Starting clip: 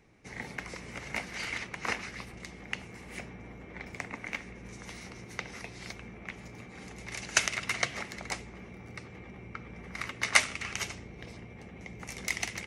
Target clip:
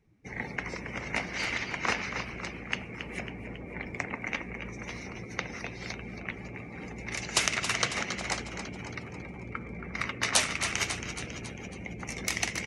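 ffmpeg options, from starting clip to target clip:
-filter_complex "[0:a]afftfilt=real='re*lt(hypot(re,im),0.141)':imag='im*lt(hypot(re,im),0.141)':win_size=1024:overlap=0.75,asplit=9[s0][s1][s2][s3][s4][s5][s6][s7][s8];[s1]adelay=274,afreqshift=50,volume=0.355[s9];[s2]adelay=548,afreqshift=100,volume=0.226[s10];[s3]adelay=822,afreqshift=150,volume=0.145[s11];[s4]adelay=1096,afreqshift=200,volume=0.0933[s12];[s5]adelay=1370,afreqshift=250,volume=0.0596[s13];[s6]adelay=1644,afreqshift=300,volume=0.038[s14];[s7]adelay=1918,afreqshift=350,volume=0.0243[s15];[s8]adelay=2192,afreqshift=400,volume=0.0157[s16];[s0][s9][s10][s11][s12][s13][s14][s15][s16]amix=inputs=9:normalize=0,afftdn=nr=17:nf=-51,volume=1.68"

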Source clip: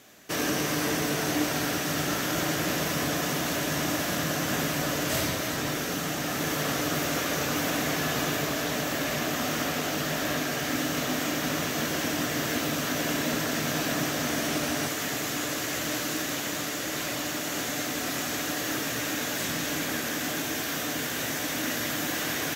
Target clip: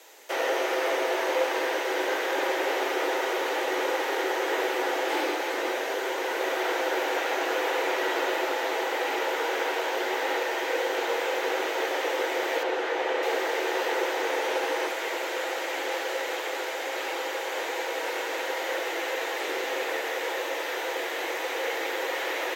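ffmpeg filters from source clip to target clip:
-filter_complex "[0:a]afreqshift=220,acrossover=split=3500[s0][s1];[s1]acompressor=threshold=0.00398:ratio=4:attack=1:release=60[s2];[s0][s2]amix=inputs=2:normalize=0,asettb=1/sr,asplit=3[s3][s4][s5];[s3]atrim=end=12.634[s6];[s4]atrim=start=12.63:end=13.23,asetpts=PTS-STARTPTS,afade=t=in:d=0.004:c=qsin,afade=t=out:st=0.596:d=0.004:c=qsin,aemphasis=mode=reproduction:type=50fm[s7];[s5]atrim=start=13.226[s8];[s6][s7]acrossfade=d=0.004:c1=hsin:c2=qsin[s9];[s9][s8]acrossfade=d=0.004:c1=qsin:c2=hsin,volume=1.26"

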